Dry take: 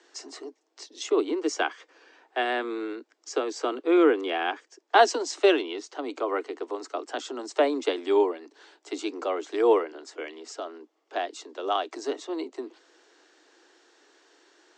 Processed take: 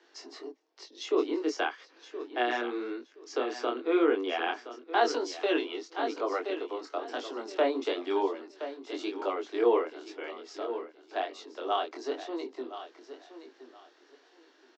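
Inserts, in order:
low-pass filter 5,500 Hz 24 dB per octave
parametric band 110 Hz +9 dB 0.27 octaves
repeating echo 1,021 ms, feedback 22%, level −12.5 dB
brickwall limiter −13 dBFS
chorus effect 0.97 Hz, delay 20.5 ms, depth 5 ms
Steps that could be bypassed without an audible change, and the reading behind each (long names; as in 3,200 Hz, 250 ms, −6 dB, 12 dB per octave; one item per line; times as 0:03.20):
parametric band 110 Hz: nothing at its input below 230 Hz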